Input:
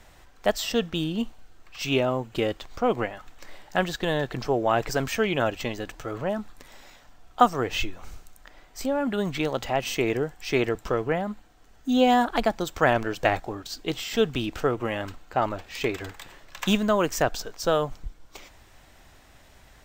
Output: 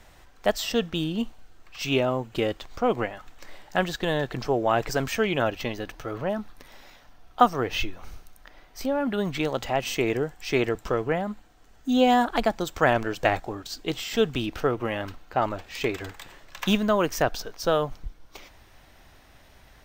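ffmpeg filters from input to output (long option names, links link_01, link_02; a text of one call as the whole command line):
ffmpeg -i in.wav -af "asetnsamples=nb_out_samples=441:pad=0,asendcmd='5.41 equalizer g -11.5;9.33 equalizer g -0.5;14.46 equalizer g -9.5;15.41 equalizer g -1.5;16.61 equalizer g -10',equalizer=frequency=7500:width_type=o:width=0.22:gain=-2" out.wav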